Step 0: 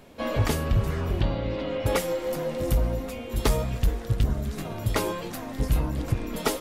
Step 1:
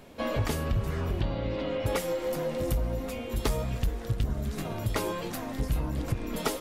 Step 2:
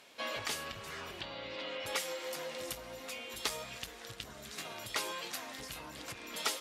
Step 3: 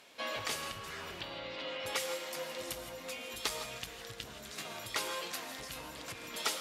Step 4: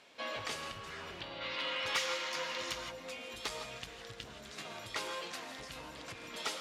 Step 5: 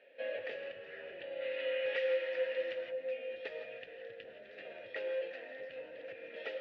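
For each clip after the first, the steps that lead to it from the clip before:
downward compressor 2 to 1, threshold −28 dBFS, peak gain reduction 6 dB
resonant band-pass 4,400 Hz, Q 0.56; level +2.5 dB
reverb whose tail is shaped and stops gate 190 ms rising, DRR 8 dB
high-frequency loss of the air 53 metres; gain on a spectral selection 0:01.41–0:02.91, 870–7,200 Hz +8 dB; soft clipping −24 dBFS, distortion −17 dB; level −1 dB
formant filter e; high-frequency loss of the air 320 metres; level +11.5 dB

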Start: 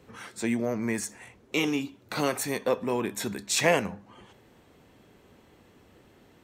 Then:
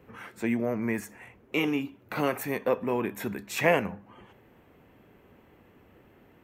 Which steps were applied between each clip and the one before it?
flat-topped bell 5,800 Hz −12 dB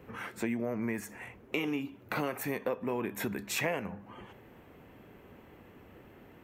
downward compressor 4 to 1, threshold −34 dBFS, peak gain reduction 14.5 dB
level +3 dB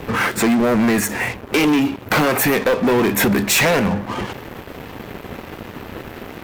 leveller curve on the samples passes 5
level +6 dB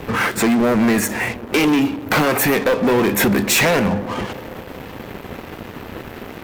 delay with a band-pass on its return 132 ms, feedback 79%, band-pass 400 Hz, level −16.5 dB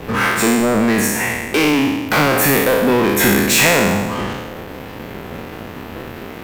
peak hold with a decay on every bin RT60 1.27 s
level −1 dB

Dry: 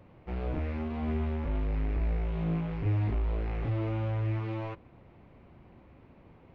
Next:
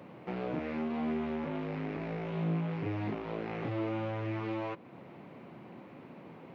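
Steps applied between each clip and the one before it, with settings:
high-pass filter 150 Hz 24 dB per octave
downward compressor 1.5 to 1, threshold −51 dBFS, peak gain reduction 8 dB
level +8 dB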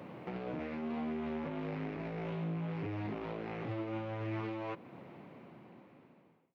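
fade-out on the ending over 2.17 s
brickwall limiter −33.5 dBFS, peak gain reduction 9.5 dB
level +2 dB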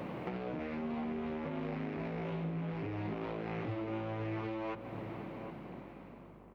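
downward compressor, threshold −43 dBFS, peak gain reduction 8.5 dB
hum with harmonics 50 Hz, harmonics 27, −68 dBFS −3 dB per octave
slap from a distant wall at 130 metres, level −9 dB
level +7 dB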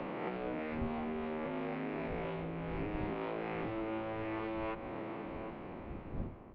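peak hold with a rise ahead of every peak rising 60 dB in 1.00 s
wind on the microphone 88 Hz −38 dBFS
three-way crossover with the lows and the highs turned down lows −12 dB, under 200 Hz, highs −24 dB, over 4,200 Hz

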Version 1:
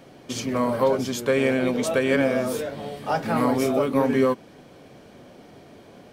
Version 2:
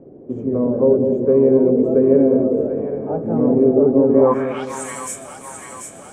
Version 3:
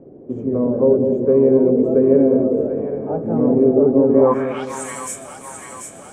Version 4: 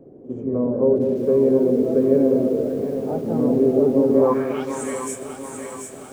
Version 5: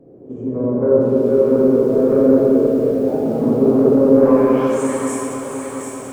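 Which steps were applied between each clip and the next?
high shelf with overshoot 6,000 Hz +9 dB, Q 3; echo with a time of its own for lows and highs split 750 Hz, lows 202 ms, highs 739 ms, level −5.5 dB; low-pass filter sweep 410 Hz → 8,400 Hz, 0:04.11–0:04.81; level +3 dB
no processing that can be heard
echo ahead of the sound 57 ms −16 dB; feedback echo at a low word length 717 ms, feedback 55%, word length 6 bits, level −13 dB; level −3.5 dB
in parallel at −8.5 dB: sine wavefolder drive 5 dB, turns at −4.5 dBFS; on the sum: convolution reverb RT60 2.8 s, pre-delay 26 ms, DRR −5.5 dB; level −8 dB

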